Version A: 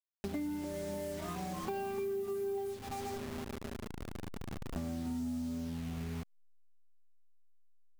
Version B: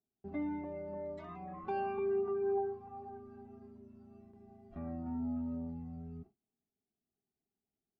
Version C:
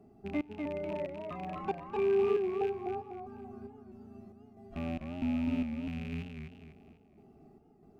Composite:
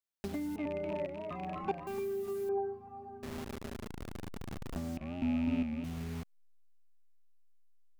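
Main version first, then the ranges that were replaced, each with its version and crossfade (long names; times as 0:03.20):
A
0:00.56–0:01.87: punch in from C
0:02.49–0:03.23: punch in from B
0:04.97–0:05.84: punch in from C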